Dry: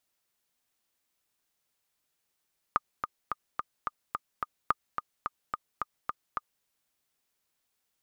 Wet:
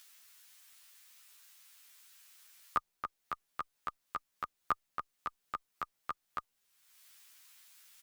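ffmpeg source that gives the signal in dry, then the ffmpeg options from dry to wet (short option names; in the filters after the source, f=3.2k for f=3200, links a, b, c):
-f lavfi -i "aevalsrc='pow(10,(-10.5-7*gte(mod(t,7*60/216),60/216))/20)*sin(2*PI*1220*mod(t,60/216))*exp(-6.91*mod(t,60/216)/0.03)':d=3.88:s=44100"
-filter_complex "[0:a]acrossover=split=1100[a][b];[b]acompressor=mode=upward:threshold=-38dB:ratio=2.5[c];[a][c]amix=inputs=2:normalize=0,asplit=2[d][e];[e]adelay=11.2,afreqshift=-2.1[f];[d][f]amix=inputs=2:normalize=1"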